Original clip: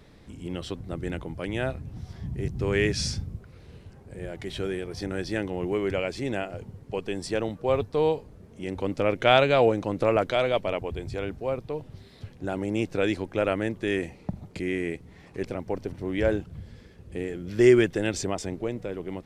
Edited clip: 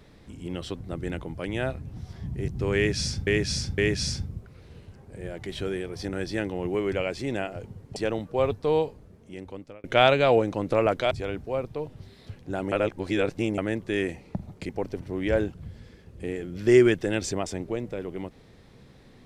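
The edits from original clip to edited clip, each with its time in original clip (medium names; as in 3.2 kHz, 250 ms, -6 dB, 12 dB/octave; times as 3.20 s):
2.76–3.27 s: loop, 3 plays
6.94–7.26 s: delete
8.14–9.14 s: fade out
10.41–11.05 s: delete
12.66–13.52 s: reverse
14.63–15.61 s: delete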